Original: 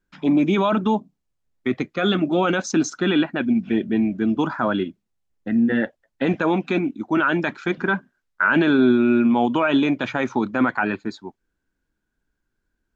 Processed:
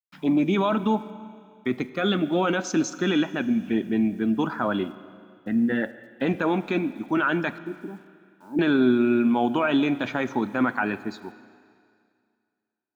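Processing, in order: 7.58–8.59 vocal tract filter u; bit-crush 10-bit; Schroeder reverb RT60 2.2 s, combs from 32 ms, DRR 14.5 dB; gain -3.5 dB

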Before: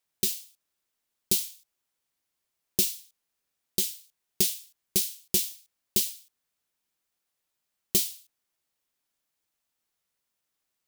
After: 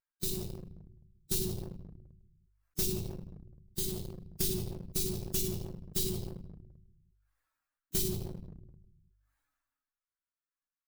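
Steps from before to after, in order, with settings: per-bin expansion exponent 2; notches 50/100 Hz; shoebox room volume 98 m³, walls mixed, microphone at 0.58 m; dynamic EQ 110 Hz, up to +6 dB, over -60 dBFS, Q 3.4; small resonant body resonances 380/3900 Hz, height 10 dB, ringing for 95 ms; upward compressor, threshold -38 dBFS; passive tone stack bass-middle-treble 10-0-1; sample leveller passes 2; sustainer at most 36 dB/s; gain +7.5 dB

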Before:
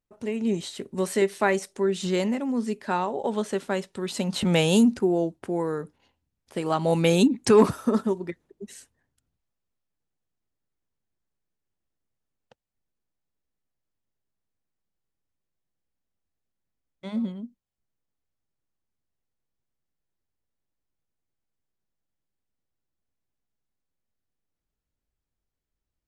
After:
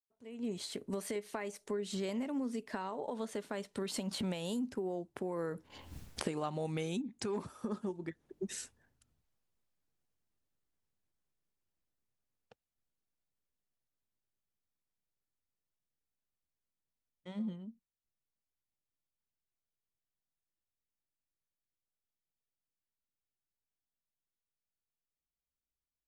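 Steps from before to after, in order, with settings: Doppler pass-by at 5.95, 17 m/s, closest 1.1 m; recorder AGC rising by 51 dB/s; gain +4.5 dB

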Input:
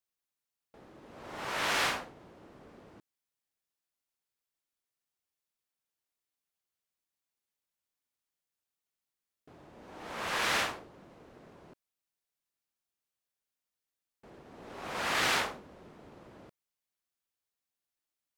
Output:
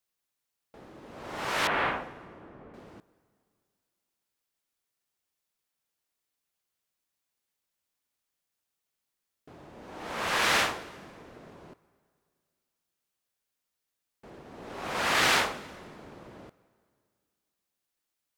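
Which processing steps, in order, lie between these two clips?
1.67–2.74 Gaussian blur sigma 3.5 samples; plate-style reverb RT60 2.1 s, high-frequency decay 0.75×, pre-delay 0.105 s, DRR 19.5 dB; gain +5 dB

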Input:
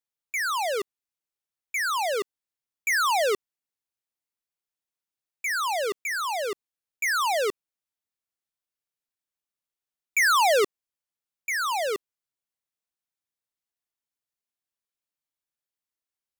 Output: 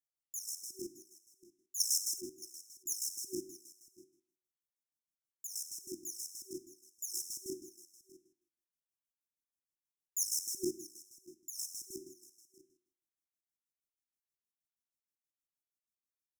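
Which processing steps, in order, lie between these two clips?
spectral trails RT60 0.57 s; 1.8–2.21 resonant high shelf 3100 Hz +9 dB, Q 1.5; on a send: echo 0.619 s -19 dB; on the sum: chopper 6.3 Hz, depth 65%, duty 45%; FFT band-reject 380–5200 Hz; gain -5.5 dB

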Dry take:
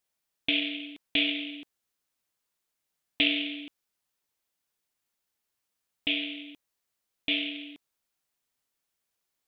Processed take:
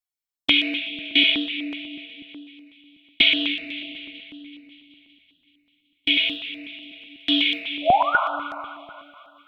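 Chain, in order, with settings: high shelf 2100 Hz +6.5 dB, from 6.17 s +11.5 dB; gate -31 dBFS, range -20 dB; 7.82–8.16 painted sound rise 560–1500 Hz -21 dBFS; flange 0.46 Hz, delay 6.3 ms, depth 5.4 ms, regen +53%; thinning echo 0.189 s, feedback 73%, high-pass 630 Hz, level -16.5 dB; reverb RT60 2.4 s, pre-delay 3 ms, DRR -4.5 dB; stepped notch 8.1 Hz 210–3300 Hz; gain +3.5 dB

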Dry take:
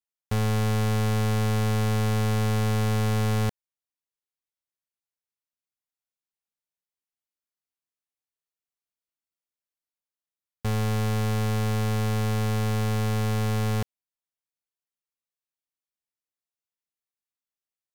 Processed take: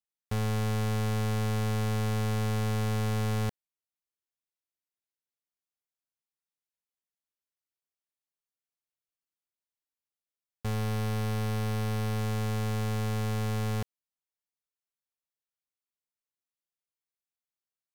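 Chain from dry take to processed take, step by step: 10.74–12.19 notch 7100 Hz, Q 9.1; gain -5 dB

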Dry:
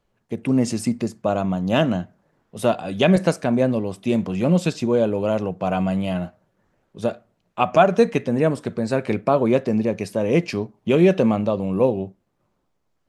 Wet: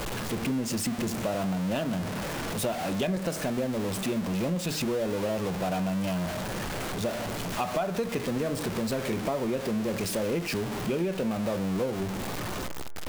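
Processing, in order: zero-crossing step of -18 dBFS; de-hum 78.87 Hz, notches 29; compressor, threshold -17 dBFS, peak gain reduction 9.5 dB; gain -8.5 dB

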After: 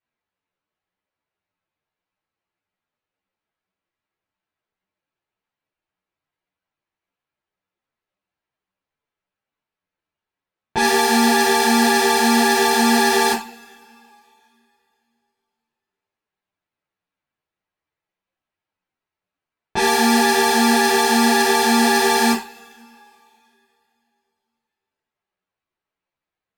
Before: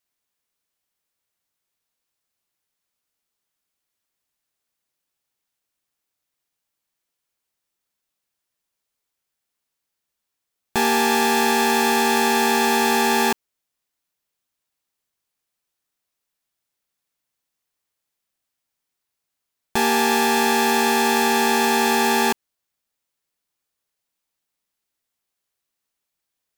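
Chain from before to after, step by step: low-pass opened by the level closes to 2200 Hz, open at -15 dBFS; two-slope reverb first 0.31 s, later 2.9 s, from -28 dB, DRR -1 dB; ensemble effect; gain +2 dB

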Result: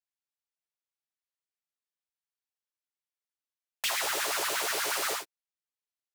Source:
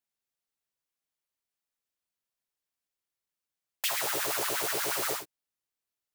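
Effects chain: weighting filter A; sample leveller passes 2; gain -4.5 dB

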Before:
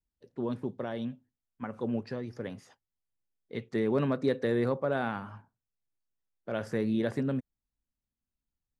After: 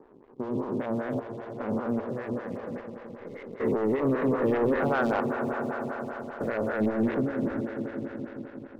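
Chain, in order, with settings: stepped spectrum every 0.4 s; LFO low-pass saw up 3.5 Hz 940–2400 Hz; on a send: swelling echo 85 ms, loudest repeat 5, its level -15 dB; on the sum: sample leveller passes 2; photocell phaser 5.1 Hz; gain +2.5 dB

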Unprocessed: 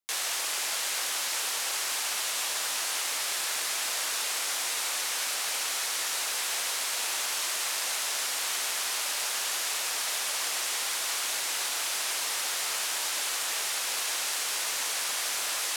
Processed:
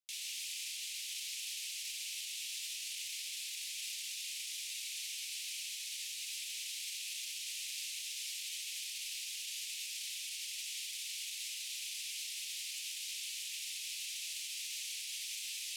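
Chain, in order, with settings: steep high-pass 2400 Hz 48 dB/oct; tilt -2.5 dB/oct; limiter -34 dBFS, peak gain reduction 9 dB; gain +1 dB

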